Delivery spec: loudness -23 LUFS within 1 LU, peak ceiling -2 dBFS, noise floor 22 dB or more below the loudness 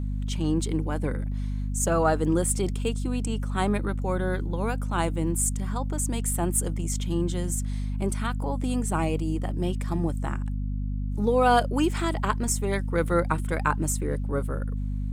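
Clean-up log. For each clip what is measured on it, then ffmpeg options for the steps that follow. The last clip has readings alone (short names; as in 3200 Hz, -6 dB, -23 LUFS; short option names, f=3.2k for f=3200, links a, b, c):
hum 50 Hz; harmonics up to 250 Hz; hum level -26 dBFS; loudness -27.0 LUFS; peak -8.5 dBFS; loudness target -23.0 LUFS
-> -af "bandreject=f=50:t=h:w=4,bandreject=f=100:t=h:w=4,bandreject=f=150:t=h:w=4,bandreject=f=200:t=h:w=4,bandreject=f=250:t=h:w=4"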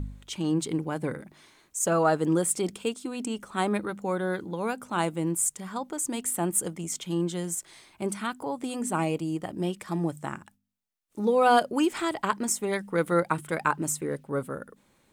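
hum none; loudness -28.5 LUFS; peak -9.5 dBFS; loudness target -23.0 LUFS
-> -af "volume=5.5dB"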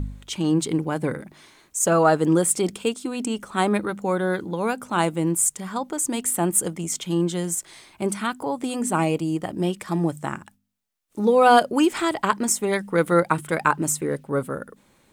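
loudness -23.0 LUFS; peak -4.0 dBFS; noise floor -60 dBFS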